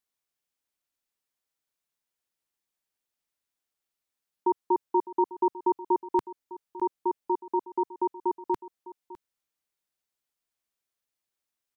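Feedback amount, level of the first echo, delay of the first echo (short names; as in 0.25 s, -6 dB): no steady repeat, -17.0 dB, 0.606 s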